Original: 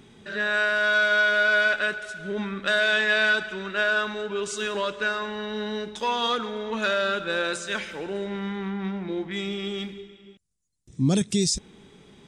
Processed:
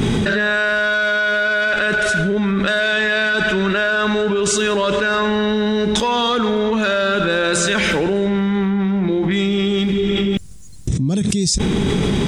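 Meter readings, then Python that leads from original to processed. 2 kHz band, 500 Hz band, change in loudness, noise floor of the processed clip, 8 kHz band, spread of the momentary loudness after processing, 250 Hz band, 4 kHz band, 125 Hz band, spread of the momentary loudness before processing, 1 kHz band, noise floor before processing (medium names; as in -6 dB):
+5.5 dB, +10.0 dB, +7.5 dB, -20 dBFS, +10.0 dB, 2 LU, +12.5 dB, +7.5 dB, +12.5 dB, 11 LU, +7.5 dB, -54 dBFS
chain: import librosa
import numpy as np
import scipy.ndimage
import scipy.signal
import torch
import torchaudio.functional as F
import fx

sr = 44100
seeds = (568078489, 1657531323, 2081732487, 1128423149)

y = fx.low_shelf(x, sr, hz=270.0, db=9.0)
y = fx.env_flatten(y, sr, amount_pct=100)
y = F.gain(torch.from_numpy(y), -4.5).numpy()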